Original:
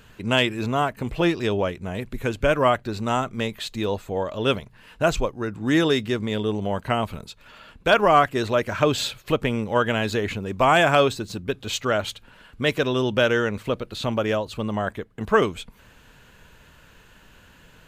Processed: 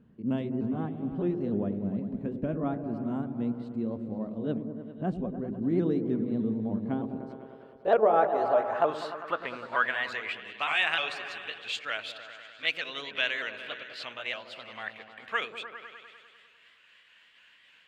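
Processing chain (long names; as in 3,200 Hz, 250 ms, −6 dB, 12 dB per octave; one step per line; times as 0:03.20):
pitch shifter swept by a sawtooth +2.5 semitones, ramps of 305 ms
echo whose low-pass opens from repeat to repeat 100 ms, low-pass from 400 Hz, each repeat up 1 octave, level −6 dB
band-pass filter sweep 220 Hz → 2,500 Hz, 0:06.71–0:10.52
level +1.5 dB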